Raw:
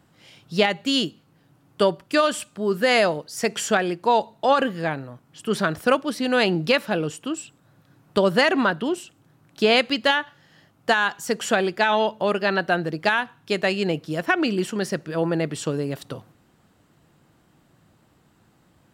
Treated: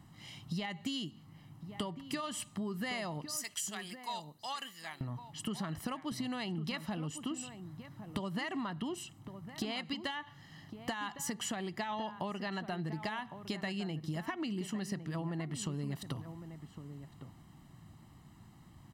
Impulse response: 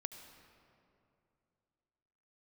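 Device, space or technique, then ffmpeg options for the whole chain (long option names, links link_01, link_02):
serial compression, leveller first: -filter_complex "[0:a]bass=frequency=250:gain=5,treble=frequency=4000:gain=1,aecho=1:1:1:0.64,asettb=1/sr,asplit=3[link_01][link_02][link_03];[link_01]atrim=end=3.374[link_04];[link_02]atrim=start=3.37:end=5.01,asetpts=PTS-STARTPTS,afade=type=in:duration=0.004:curve=qsin,afade=type=out:start_time=1.636:duration=0.004:curve=qsin,aderivative[link_05];[link_03]atrim=start=5.006[link_06];[link_04][link_05]acrossfade=duration=0.004:curve1=hsin:curve2=qsin[link_07];[link_07][link_06]acrossfade=duration=0.004:curve1=qsin:curve2=hsin,acompressor=threshold=-22dB:ratio=3,acompressor=threshold=-32dB:ratio=6,asplit=2[link_08][link_09];[link_09]adelay=1108,volume=-10dB,highshelf=frequency=4000:gain=-24.9[link_10];[link_08][link_10]amix=inputs=2:normalize=0,volume=-3.5dB"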